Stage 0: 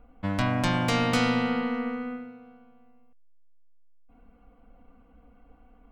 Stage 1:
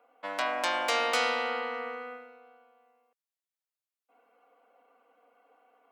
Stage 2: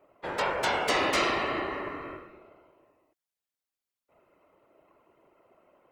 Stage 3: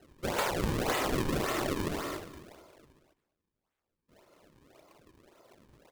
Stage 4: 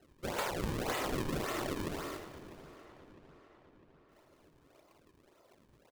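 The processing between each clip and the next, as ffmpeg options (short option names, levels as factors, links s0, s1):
-af "highpass=f=450:w=0.5412,highpass=f=450:w=1.3066"
-af "afreqshift=-130,afftfilt=real='hypot(re,im)*cos(2*PI*random(0))':imag='hypot(re,im)*sin(2*PI*random(1))':win_size=512:overlap=0.75,volume=2.37"
-af "acrusher=samples=37:mix=1:aa=0.000001:lfo=1:lforange=59.2:lforate=1.8,aecho=1:1:214:0.133,acompressor=threshold=0.0282:ratio=6,volume=1.5"
-filter_complex "[0:a]asplit=2[s0][s1];[s1]adelay=653,lowpass=f=4400:p=1,volume=0.158,asplit=2[s2][s3];[s3]adelay=653,lowpass=f=4400:p=1,volume=0.55,asplit=2[s4][s5];[s5]adelay=653,lowpass=f=4400:p=1,volume=0.55,asplit=2[s6][s7];[s7]adelay=653,lowpass=f=4400:p=1,volume=0.55,asplit=2[s8][s9];[s9]adelay=653,lowpass=f=4400:p=1,volume=0.55[s10];[s0][s2][s4][s6][s8][s10]amix=inputs=6:normalize=0,volume=0.562"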